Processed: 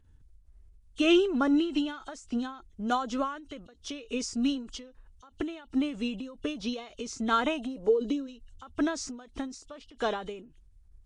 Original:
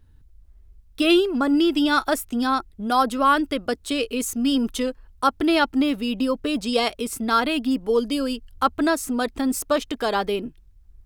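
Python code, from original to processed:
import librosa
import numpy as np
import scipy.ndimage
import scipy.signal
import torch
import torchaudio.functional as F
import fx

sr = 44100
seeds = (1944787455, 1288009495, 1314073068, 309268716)

y = fx.freq_compress(x, sr, knee_hz=2700.0, ratio=1.5)
y = fx.peak_eq(y, sr, hz=fx.line((7.45, 910.0), (8.26, 280.0)), db=14.5, octaves=0.76, at=(7.45, 8.26), fade=0.02)
y = fx.end_taper(y, sr, db_per_s=100.0)
y = F.gain(torch.from_numpy(y), -4.5).numpy()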